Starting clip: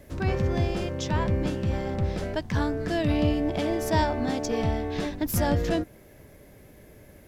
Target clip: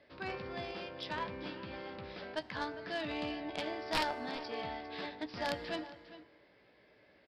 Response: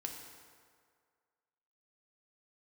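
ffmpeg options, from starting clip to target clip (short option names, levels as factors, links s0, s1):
-filter_complex "[0:a]highpass=f=970:p=1,asplit=2[s0][s1];[s1]adelay=16,volume=0.355[s2];[s0][s2]amix=inputs=2:normalize=0,aresample=11025,aeval=exprs='(mod(10.6*val(0)+1,2)-1)/10.6':c=same,aresample=44100,aecho=1:1:404:0.188,aeval=exprs='0.133*(cos(1*acos(clip(val(0)/0.133,-1,1)))-cos(1*PI/2))+0.0299*(cos(3*acos(clip(val(0)/0.133,-1,1)))-cos(3*PI/2))+0.00668*(cos(4*acos(clip(val(0)/0.133,-1,1)))-cos(4*PI/2))+0.00422*(cos(5*acos(clip(val(0)/0.133,-1,1)))-cos(5*PI/2))+0.00335*(cos(6*acos(clip(val(0)/0.133,-1,1)))-cos(6*PI/2))':c=same,asplit=2[s3][s4];[1:a]atrim=start_sample=2205[s5];[s4][s5]afir=irnorm=-1:irlink=0,volume=0.316[s6];[s3][s6]amix=inputs=2:normalize=0,volume=0.841"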